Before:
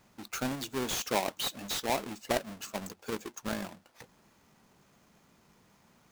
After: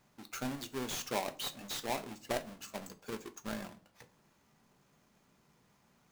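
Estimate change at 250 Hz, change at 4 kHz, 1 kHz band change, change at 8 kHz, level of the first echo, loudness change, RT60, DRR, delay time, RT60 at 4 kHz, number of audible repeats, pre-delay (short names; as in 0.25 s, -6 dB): -5.0 dB, -5.5 dB, -5.5 dB, -5.5 dB, none, -5.5 dB, 0.40 s, 9.0 dB, none, 0.30 s, none, 5 ms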